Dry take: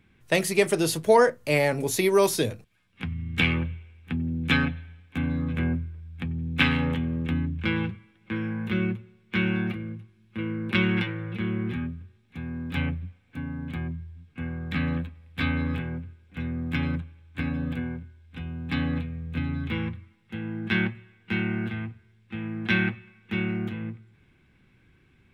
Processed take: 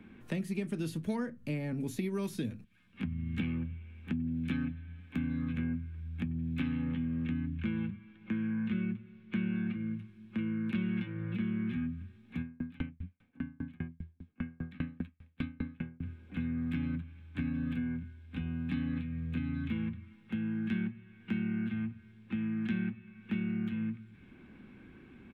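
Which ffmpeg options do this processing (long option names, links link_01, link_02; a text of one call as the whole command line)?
ffmpeg -i in.wav -filter_complex "[0:a]asettb=1/sr,asplit=3[link_01][link_02][link_03];[link_01]atrim=end=6.714[link_04];[link_02]atrim=start=6.71:end=9.81,asetpts=PTS-STARTPTS,afade=type=in:duration=0.004:curve=qsin,afade=type=out:start_time=3.096:duration=0.004:curve=qsin,lowpass=4300[link_05];[link_03]atrim=start=9.806[link_06];[link_04][link_05]acrossfade=duration=0.004:curve1=hsin:curve2=qsin[link_07];[link_07][link_06]acrossfade=duration=0.004:curve1=qsin:curve2=hsin,asplit=3[link_08][link_09][link_10];[link_08]afade=type=out:start_time=12.41:duration=0.02[link_11];[link_09]aeval=exprs='val(0)*pow(10,-38*if(lt(mod(5*n/s,1),2*abs(5)/1000),1-mod(5*n/s,1)/(2*abs(5)/1000),(mod(5*n/s,1)-2*abs(5)/1000)/(1-2*abs(5)/1000))/20)':channel_layout=same,afade=type=in:start_time=12.41:duration=0.02,afade=type=out:start_time=16.01:duration=0.02[link_12];[link_10]afade=type=in:start_time=16.01:duration=0.02[link_13];[link_11][link_12][link_13]amix=inputs=3:normalize=0,firequalizer=gain_entry='entry(140,0);entry(220,14);entry(400,8);entry(5000,-6)':delay=0.05:min_phase=1,acrossover=split=210|1500[link_14][link_15][link_16];[link_14]acompressor=threshold=-36dB:ratio=4[link_17];[link_15]acompressor=threshold=-56dB:ratio=4[link_18];[link_16]acompressor=threshold=-52dB:ratio=4[link_19];[link_17][link_18][link_19]amix=inputs=3:normalize=0,bandreject=frequency=2000:width=19,volume=1.5dB" out.wav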